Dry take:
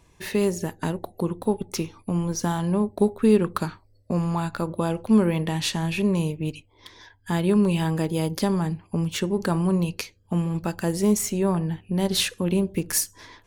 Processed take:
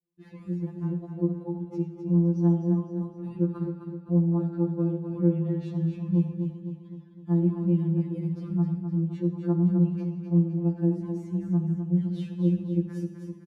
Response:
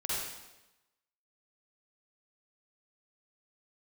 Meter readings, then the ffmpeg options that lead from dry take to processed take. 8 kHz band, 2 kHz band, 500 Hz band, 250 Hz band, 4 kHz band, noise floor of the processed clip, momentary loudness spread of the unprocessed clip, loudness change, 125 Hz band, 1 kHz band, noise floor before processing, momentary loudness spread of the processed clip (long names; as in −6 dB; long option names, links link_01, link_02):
below −35 dB, below −20 dB, −8.0 dB, −2.0 dB, below −25 dB, −48 dBFS, 9 LU, −2.5 dB, +1.0 dB, −15.5 dB, −59 dBFS, 10 LU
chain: -filter_complex "[0:a]agate=range=-33dB:threshold=-44dB:ratio=3:detection=peak,bandpass=frequency=250:width_type=q:width=2:csg=0,aecho=1:1:257|514|771|1028|1285|1542:0.447|0.228|0.116|0.0593|0.0302|0.0154,asplit=2[link_01][link_02];[1:a]atrim=start_sample=2205[link_03];[link_02][link_03]afir=irnorm=-1:irlink=0,volume=-12.5dB[link_04];[link_01][link_04]amix=inputs=2:normalize=0,afftfilt=real='re*2.83*eq(mod(b,8),0)':imag='im*2.83*eq(mod(b,8),0)':win_size=2048:overlap=0.75"